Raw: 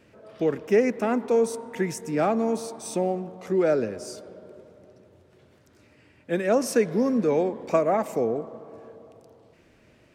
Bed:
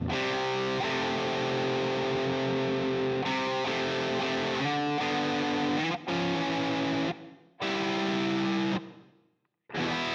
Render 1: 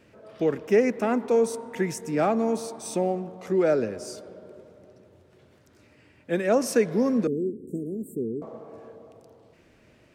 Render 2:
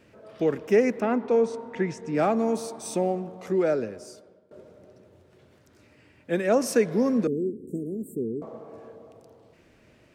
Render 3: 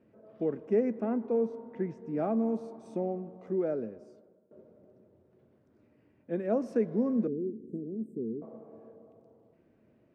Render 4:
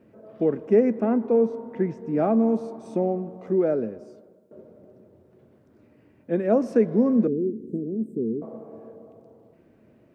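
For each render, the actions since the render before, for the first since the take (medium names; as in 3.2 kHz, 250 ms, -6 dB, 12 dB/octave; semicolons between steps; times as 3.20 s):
7.27–8.42 s: Chebyshev band-stop 410–8100 Hz, order 5
1.00–2.15 s: distance through air 130 m; 3.44–4.51 s: fade out, to -20.5 dB
band-pass filter 270 Hz, Q 0.58; feedback comb 220 Hz, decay 0.19 s, harmonics odd, mix 50%
trim +8.5 dB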